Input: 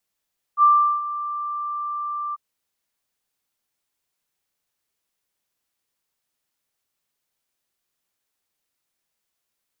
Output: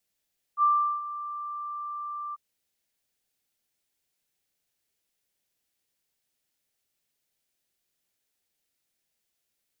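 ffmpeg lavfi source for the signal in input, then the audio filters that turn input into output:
-f lavfi -i "aevalsrc='0.316*sin(2*PI*1180*t)':d=1.794:s=44100,afade=t=in:d=0.058,afade=t=out:st=0.058:d=0.383:silence=0.178,afade=t=out:st=1.77:d=0.024"
-af "equalizer=f=1.1k:t=o:w=0.77:g=-8"

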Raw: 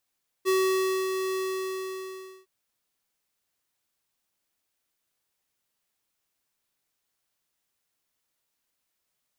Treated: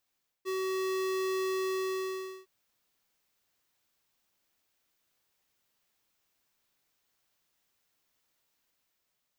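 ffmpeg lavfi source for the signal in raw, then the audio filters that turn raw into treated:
-f lavfi -i "aevalsrc='0.075*(2*lt(mod(378*t,1),0.5)-1)':d=2.01:s=44100,afade=t=in:d=0.035,afade=t=out:st=0.035:d=0.593:silence=0.473,afade=t=out:st=0.9:d=1.11"
-af "areverse,acompressor=threshold=-36dB:ratio=5,areverse,equalizer=f=10k:t=o:w=0.63:g=-5.5,dynaudnorm=f=220:g=7:m=3.5dB"

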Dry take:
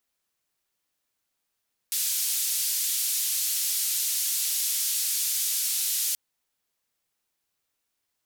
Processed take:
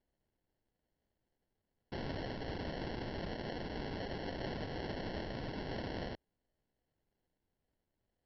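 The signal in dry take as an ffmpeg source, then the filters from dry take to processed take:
-f lavfi -i "anoisesrc=c=white:d=4.23:r=44100:seed=1,highpass=f=4200,lowpass=f=15000,volume=-18.9dB"
-af "aemphasis=mode=reproduction:type=bsi,aresample=11025,acrusher=samples=9:mix=1:aa=0.000001,aresample=44100"

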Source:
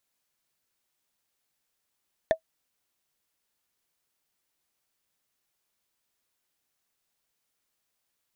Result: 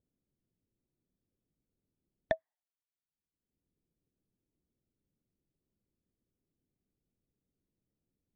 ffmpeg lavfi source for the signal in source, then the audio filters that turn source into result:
-f lavfi -i "aevalsrc='0.224*pow(10,-3*t/0.09)*sin(2*PI*645*t)+0.0891*pow(10,-3*t/0.027)*sin(2*PI*1778.3*t)+0.0355*pow(10,-3*t/0.012)*sin(2*PI*3485.6*t)+0.0141*pow(10,-3*t/0.007)*sin(2*PI*5761.8*t)+0.00562*pow(10,-3*t/0.004)*sin(2*PI*8604.3*t)':d=0.45:s=44100"
-filter_complex "[0:a]afftdn=nr=26:nf=-56,acrossover=split=370[a][b];[a]acompressor=mode=upward:threshold=-58dB:ratio=2.5[c];[b]highpass=680,lowpass=3.7k[d];[c][d]amix=inputs=2:normalize=0"

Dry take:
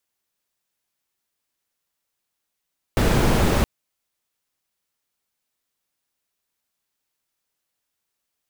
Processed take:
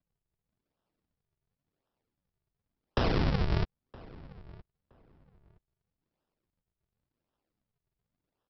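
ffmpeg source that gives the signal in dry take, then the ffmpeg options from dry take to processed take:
-f lavfi -i "anoisesrc=c=brown:a=0.624:d=0.67:r=44100:seed=1"
-filter_complex "[0:a]acrossover=split=130|500|1800[a][b][c][d];[a]acompressor=threshold=-31dB:ratio=4[e];[b]acompressor=threshold=-34dB:ratio=4[f];[c]acompressor=threshold=-31dB:ratio=4[g];[d]acompressor=threshold=-35dB:ratio=4[h];[e][f][g][h]amix=inputs=4:normalize=0,aresample=11025,acrusher=samples=24:mix=1:aa=0.000001:lfo=1:lforange=38.4:lforate=0.92,aresample=44100,asplit=2[i][j];[j]adelay=968,lowpass=f=2.1k:p=1,volume=-21dB,asplit=2[k][l];[l]adelay=968,lowpass=f=2.1k:p=1,volume=0.21[m];[i][k][m]amix=inputs=3:normalize=0"

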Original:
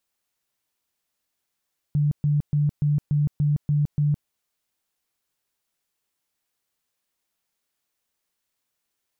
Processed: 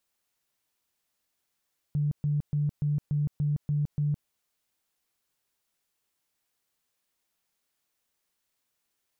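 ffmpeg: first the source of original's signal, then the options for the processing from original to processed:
-f lavfi -i "aevalsrc='0.133*sin(2*PI*147*mod(t,0.29))*lt(mod(t,0.29),24/147)':d=2.32:s=44100"
-af "alimiter=limit=-23dB:level=0:latency=1:release=65,asoftclip=type=tanh:threshold=-15.5dB"

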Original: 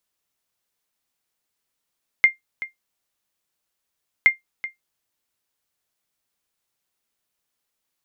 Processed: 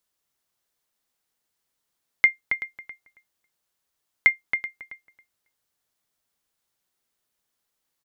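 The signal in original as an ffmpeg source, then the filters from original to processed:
-f lavfi -i "aevalsrc='0.596*(sin(2*PI*2110*mod(t,2.02))*exp(-6.91*mod(t,2.02)/0.14)+0.158*sin(2*PI*2110*max(mod(t,2.02)-0.38,0))*exp(-6.91*max(mod(t,2.02)-0.38,0)/0.14))':d=4.04:s=44100"
-filter_complex "[0:a]equalizer=f=2.5k:w=4.2:g=-3,asplit=2[a][b];[b]adelay=274,lowpass=f=2.4k:p=1,volume=-6dB,asplit=2[c][d];[d]adelay=274,lowpass=f=2.4k:p=1,volume=0.18,asplit=2[e][f];[f]adelay=274,lowpass=f=2.4k:p=1,volume=0.18[g];[c][e][g]amix=inputs=3:normalize=0[h];[a][h]amix=inputs=2:normalize=0"

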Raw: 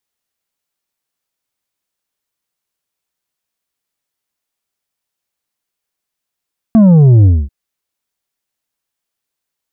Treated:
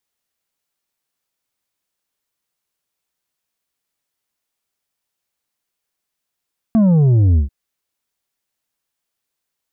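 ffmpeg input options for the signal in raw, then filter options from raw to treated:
-f lavfi -i "aevalsrc='0.631*clip((0.74-t)/0.24,0,1)*tanh(2*sin(2*PI*230*0.74/log(65/230)*(exp(log(65/230)*t/0.74)-1)))/tanh(2)':d=0.74:s=44100"
-af "alimiter=limit=-10dB:level=0:latency=1"

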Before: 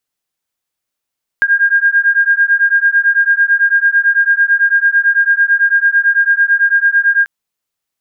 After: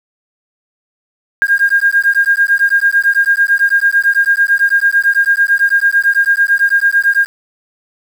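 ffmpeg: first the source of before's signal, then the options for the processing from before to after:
-f lavfi -i "aevalsrc='0.266*(sin(2*PI*1610*t)+sin(2*PI*1619*t))':d=5.84:s=44100"
-af "aeval=exprs='val(0)*gte(abs(val(0)),0.0668)':c=same"

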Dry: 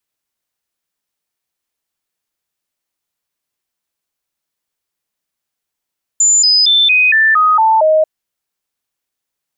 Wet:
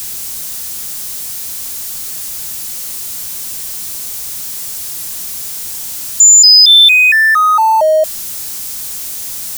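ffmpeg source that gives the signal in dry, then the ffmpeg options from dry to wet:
-f lavfi -i "aevalsrc='0.447*clip(min(mod(t,0.23),0.23-mod(t,0.23))/0.005,0,1)*sin(2*PI*7080*pow(2,-floor(t/0.23)/2)*mod(t,0.23))':d=1.84:s=44100"
-af "aeval=exprs='val(0)+0.5*0.0376*sgn(val(0))':c=same,bass=f=250:g=8,treble=f=4k:g=13,alimiter=level_in=0dB:limit=-1dB:release=50:level=0:latency=1"

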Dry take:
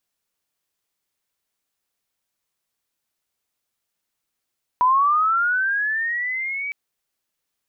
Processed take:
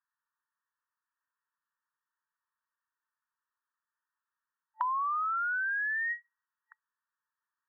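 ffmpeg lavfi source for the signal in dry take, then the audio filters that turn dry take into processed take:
-f lavfi -i "aevalsrc='pow(10,(-13-12*t/1.91)/20)*sin(2*PI*(980*t+1320*t*t/(2*1.91)))':d=1.91:s=44100"
-af "afftfilt=real='re*between(b*sr/4096,880,1900)':imag='im*between(b*sr/4096,880,1900)':win_size=4096:overlap=0.75,acompressor=threshold=-31dB:ratio=6"

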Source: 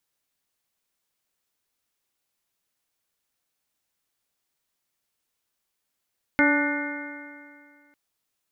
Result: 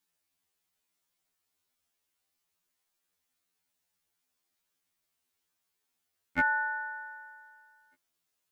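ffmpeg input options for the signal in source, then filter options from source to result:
-f lavfi -i "aevalsrc='0.112*pow(10,-3*t/2.14)*sin(2*PI*288.3*t)+0.0531*pow(10,-3*t/2.14)*sin(2*PI*578.41*t)+0.0447*pow(10,-3*t/2.14)*sin(2*PI*872.13*t)+0.02*pow(10,-3*t/2.14)*sin(2*PI*1171.19*t)+0.0891*pow(10,-3*t/2.14)*sin(2*PI*1477.32*t)+0.0398*pow(10,-3*t/2.14)*sin(2*PI*1792.13*t)+0.0944*pow(10,-3*t/2.14)*sin(2*PI*2117.18*t)':d=1.55:s=44100"
-af "bandreject=f=540:w=12,afftfilt=real='re*2*eq(mod(b,4),0)':imag='im*2*eq(mod(b,4),0)':win_size=2048:overlap=0.75"

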